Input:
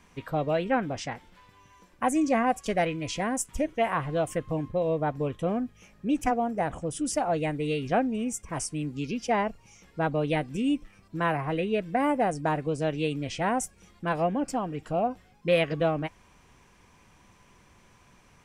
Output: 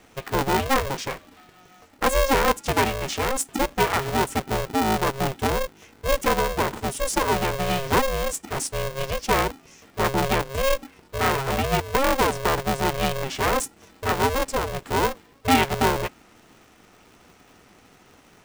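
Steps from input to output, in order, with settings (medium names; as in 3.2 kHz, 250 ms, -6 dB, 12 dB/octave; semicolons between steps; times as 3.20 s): polarity switched at an audio rate 270 Hz; trim +4.5 dB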